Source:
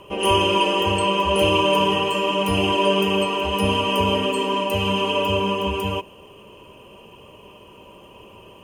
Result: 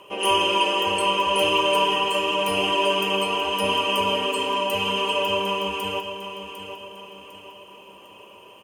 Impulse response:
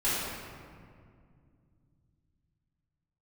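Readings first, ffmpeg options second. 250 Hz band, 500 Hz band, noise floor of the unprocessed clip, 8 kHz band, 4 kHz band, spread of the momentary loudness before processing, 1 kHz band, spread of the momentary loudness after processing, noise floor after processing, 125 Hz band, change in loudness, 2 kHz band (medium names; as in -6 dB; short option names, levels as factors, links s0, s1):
-7.5 dB, -3.5 dB, -47 dBFS, +0.5 dB, +0.5 dB, 5 LU, -1.0 dB, 16 LU, -47 dBFS, -12.0 dB, -1.5 dB, 0.0 dB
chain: -filter_complex "[0:a]highpass=f=590:p=1,asplit=2[s0][s1];[s1]aecho=0:1:752|1504|2256|3008:0.316|0.133|0.0558|0.0234[s2];[s0][s2]amix=inputs=2:normalize=0"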